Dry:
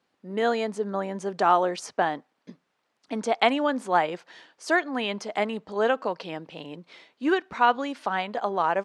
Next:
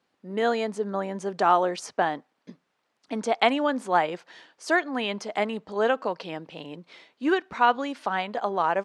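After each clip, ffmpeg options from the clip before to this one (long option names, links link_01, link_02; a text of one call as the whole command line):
ffmpeg -i in.wav -af anull out.wav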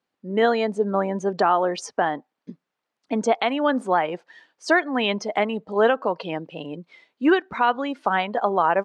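ffmpeg -i in.wav -af "afftdn=noise_reduction=14:noise_floor=-40,alimiter=limit=-15dB:level=0:latency=1:release=346,volume=6.5dB" out.wav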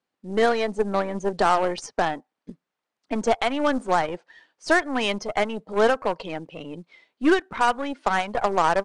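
ffmpeg -i in.wav -af "aeval=exprs='0.398*(cos(1*acos(clip(val(0)/0.398,-1,1)))-cos(1*PI/2))+0.0282*(cos(3*acos(clip(val(0)/0.398,-1,1)))-cos(3*PI/2))+0.0224*(cos(4*acos(clip(val(0)/0.398,-1,1)))-cos(4*PI/2))+0.0251*(cos(6*acos(clip(val(0)/0.398,-1,1)))-cos(6*PI/2))+0.0355*(cos(8*acos(clip(val(0)/0.398,-1,1)))-cos(8*PI/2))':channel_layout=same,acrusher=bits=8:mode=log:mix=0:aa=0.000001,aresample=22050,aresample=44100" out.wav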